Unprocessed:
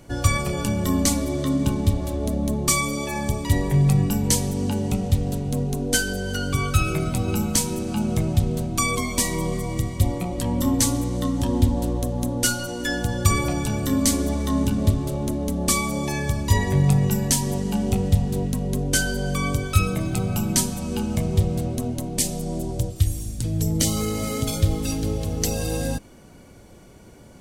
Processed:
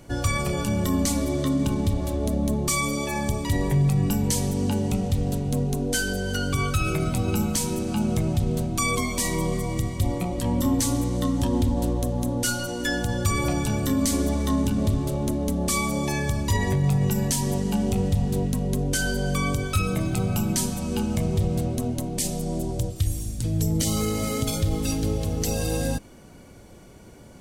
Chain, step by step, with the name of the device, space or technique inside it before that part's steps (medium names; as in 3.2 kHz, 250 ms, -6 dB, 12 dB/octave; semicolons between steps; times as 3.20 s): clipper into limiter (hard clipper -8.5 dBFS, distortion -29 dB; peak limiter -14 dBFS, peak gain reduction 5.5 dB)